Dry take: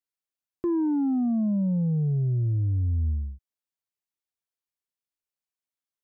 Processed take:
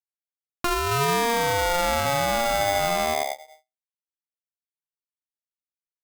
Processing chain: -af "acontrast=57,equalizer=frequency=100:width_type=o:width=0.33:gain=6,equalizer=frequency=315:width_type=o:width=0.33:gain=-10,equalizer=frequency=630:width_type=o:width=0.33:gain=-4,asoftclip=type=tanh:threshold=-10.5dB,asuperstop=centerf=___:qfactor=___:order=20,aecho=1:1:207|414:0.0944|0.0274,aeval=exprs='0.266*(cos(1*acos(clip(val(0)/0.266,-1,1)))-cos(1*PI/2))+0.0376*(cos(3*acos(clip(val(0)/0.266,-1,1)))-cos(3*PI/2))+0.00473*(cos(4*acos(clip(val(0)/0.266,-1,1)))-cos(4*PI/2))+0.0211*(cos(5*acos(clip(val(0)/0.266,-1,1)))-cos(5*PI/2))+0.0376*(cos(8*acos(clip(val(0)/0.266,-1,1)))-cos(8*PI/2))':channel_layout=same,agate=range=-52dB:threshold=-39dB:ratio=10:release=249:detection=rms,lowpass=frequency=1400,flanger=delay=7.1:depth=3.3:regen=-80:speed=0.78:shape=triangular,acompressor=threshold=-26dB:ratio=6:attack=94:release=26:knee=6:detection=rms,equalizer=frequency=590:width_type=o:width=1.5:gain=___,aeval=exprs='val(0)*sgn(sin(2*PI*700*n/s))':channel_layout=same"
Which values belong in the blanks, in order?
1000, 0.77, 11